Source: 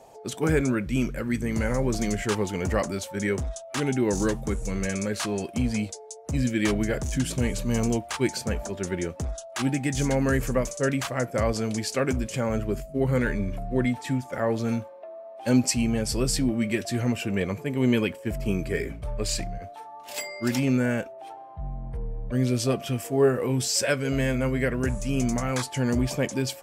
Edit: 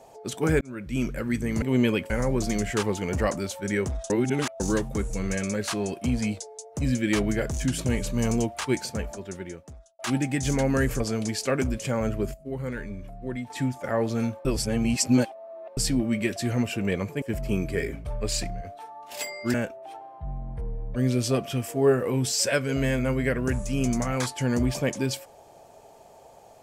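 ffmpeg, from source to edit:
-filter_complex "[0:a]asplit=14[a][b][c][d][e][f][g][h][i][j][k][l][m][n];[a]atrim=end=0.61,asetpts=PTS-STARTPTS,afade=t=out:st=0.606:d=0.004:c=hsin[o];[b]atrim=start=0.61:end=1.622,asetpts=PTS-STARTPTS,afade=t=in:d=0.48[p];[c]atrim=start=17.708:end=18.192[q];[d]atrim=start=1.618:end=3.622[r];[e]atrim=start=3.618:end=4.122,asetpts=PTS-STARTPTS,areverse[s];[f]atrim=start=4.118:end=9.51,asetpts=PTS-STARTPTS,afade=t=out:st=4.022:d=1.37[t];[g]atrim=start=9.51:end=10.522,asetpts=PTS-STARTPTS,afade=t=in:d=0.004:c=hsin[u];[h]atrim=start=11.488:end=12.832[v];[i]atrim=start=12.828:end=13.992,asetpts=PTS-STARTPTS,volume=-8.5dB[w];[j]atrim=start=13.988:end=14.942[x];[k]atrim=start=14.938:end=16.262,asetpts=PTS-STARTPTS,areverse[y];[l]atrim=start=16.258:end=17.712[z];[m]atrim=start=18.188:end=20.512[aa];[n]atrim=start=20.898[ab];[o][p]concat=n=2:v=0:a=1[ac];[ac][q]acrossfade=d=0.004:c1=hsin:c2=hsin[ad];[ad][r]acrossfade=d=0.004:c1=hsin:c2=hsin[ae];[ae][s]acrossfade=d=0.004:c1=hsin:c2=hsin[af];[t][u]concat=n=2:v=0:a=1[ag];[af][ag]acrossfade=d=0.004:c1=hsin:c2=hsin[ah];[ah][v]acrossfade=d=0.004:c1=hsin:c2=hsin[ai];[ai][w]acrossfade=d=0.004:c1=hsin:c2=hsin[aj];[aj][x]acrossfade=d=0.004:c1=hsin:c2=hsin[ak];[ak][y]acrossfade=d=0.004:c1=hsin:c2=hsin[al];[al][z]acrossfade=d=0.004:c1=hsin:c2=hsin[am];[am][aa]acrossfade=d=0.004:c1=hsin:c2=hsin[an];[an][ab]acrossfade=d=0.004:c1=hsin:c2=hsin"

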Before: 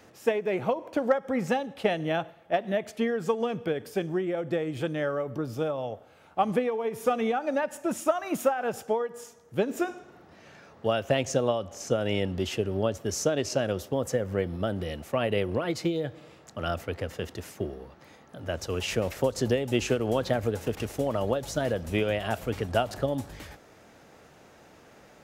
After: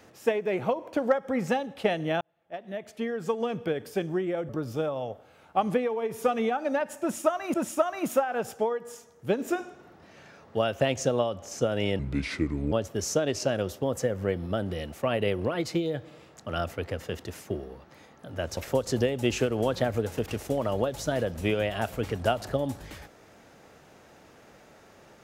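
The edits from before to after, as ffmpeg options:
-filter_complex "[0:a]asplit=7[a][b][c][d][e][f][g];[a]atrim=end=2.21,asetpts=PTS-STARTPTS,afade=t=out:st=2.206:d=0.004:c=hsin[h];[b]atrim=start=2.21:end=4.492,asetpts=PTS-STARTPTS,afade=t=in:d=1.35[i];[c]atrim=start=5.308:end=8.362[j];[d]atrim=start=7.828:end=12.284[k];[e]atrim=start=12.28:end=12.82,asetpts=PTS-STARTPTS,asetrate=32634,aresample=44100,atrim=end_sample=32181,asetpts=PTS-STARTPTS[l];[f]atrim=start=12.816:end=18.672[m];[g]atrim=start=19.058[n];[h][i]concat=n=2:v=0:a=1[o];[o][j]acrossfade=d=0.004:c1=hsin:c2=hsin[p];[p][k]acrossfade=d=0.004:c1=hsin:c2=hsin[q];[q][l]acrossfade=d=0.004:c1=hsin:c2=hsin[r];[r][m]acrossfade=d=0.004:c1=hsin:c2=hsin[s];[s][n]acrossfade=d=0.004:c1=hsin:c2=hsin"

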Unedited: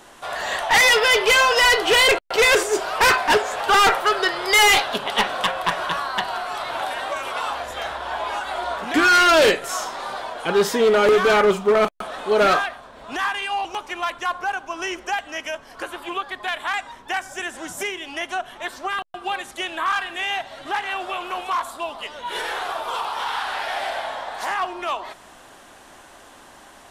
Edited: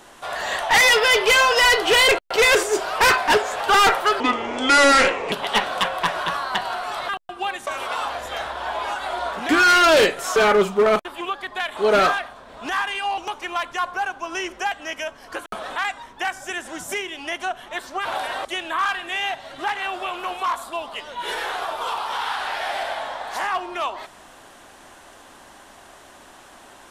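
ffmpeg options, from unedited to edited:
-filter_complex "[0:a]asplit=12[a][b][c][d][e][f][g][h][i][j][k][l];[a]atrim=end=4.204[m];[b]atrim=start=4.2:end=4.95,asetpts=PTS-STARTPTS,asetrate=29547,aresample=44100[n];[c]atrim=start=4.946:end=6.722[o];[d]atrim=start=18.938:end=19.522[p];[e]atrim=start=7.118:end=9.812[q];[f]atrim=start=11.248:end=11.942[r];[g]atrim=start=15.928:end=16.652[s];[h]atrim=start=12.238:end=15.932[t];[i]atrim=start=11.938:end=12.242[u];[j]atrim=start=16.648:end=18.942[v];[k]atrim=start=6.718:end=7.122[w];[l]atrim=start=19.518[x];[m][n]acrossfade=d=0.004:c1=hsin:c2=hsin[y];[y][o]acrossfade=d=0.004:c1=hsin:c2=hsin[z];[z][p]acrossfade=d=0.004:c1=hsin:c2=hsin[aa];[aa][q]acrossfade=d=0.004:c1=hsin:c2=hsin[ab];[ab][r]acrossfade=d=0.004:c1=hsin:c2=hsin[ac];[ac][s]acrossfade=d=0.004:c1=hsin:c2=hsin[ad];[ad][t]acrossfade=d=0.004:c1=hsin:c2=hsin[ae];[ae][u]acrossfade=d=0.004:c1=hsin:c2=hsin[af];[af][v]acrossfade=d=0.004:c1=hsin:c2=hsin[ag];[ag][w]acrossfade=d=0.004:c1=hsin:c2=hsin[ah];[ah][x]acrossfade=d=0.004:c1=hsin:c2=hsin"

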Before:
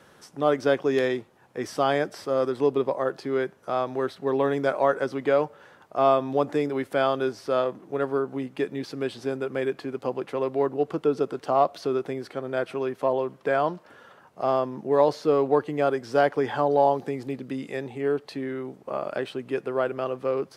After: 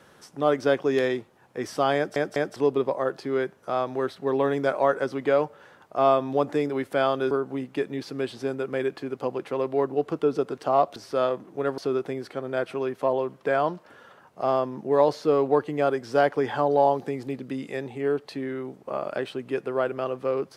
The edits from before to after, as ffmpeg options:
-filter_complex "[0:a]asplit=7[a][b][c][d][e][f][g];[a]atrim=end=2.162[h];[b]atrim=start=1.958:end=2.162[i];[c]atrim=start=1.958:end=2.162[j];[d]atrim=start=2.558:end=7.312[k];[e]atrim=start=8.128:end=11.782[l];[f]atrim=start=7.308:end=8.132[m];[g]atrim=start=11.778[n];[h][i]acrossfade=d=0.004:c1=hsin:c2=hsin[o];[o][j]acrossfade=d=0.004:c1=hsin:c2=hsin[p];[p][k]acrossfade=d=0.004:c1=hsin:c2=hsin[q];[q][l]acrossfade=d=0.004:c1=hsin:c2=hsin[r];[r][m]acrossfade=d=0.004:c1=hsin:c2=hsin[s];[s][n]acrossfade=d=0.004:c1=hsin:c2=hsin"

